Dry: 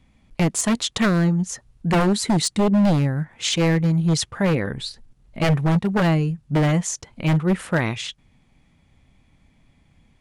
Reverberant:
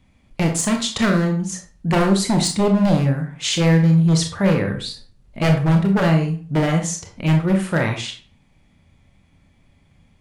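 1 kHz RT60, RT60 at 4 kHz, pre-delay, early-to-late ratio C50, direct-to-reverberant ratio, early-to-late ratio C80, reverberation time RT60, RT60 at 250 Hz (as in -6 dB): 0.40 s, 0.30 s, 23 ms, 7.5 dB, 3.0 dB, 13.0 dB, 0.40 s, 0.40 s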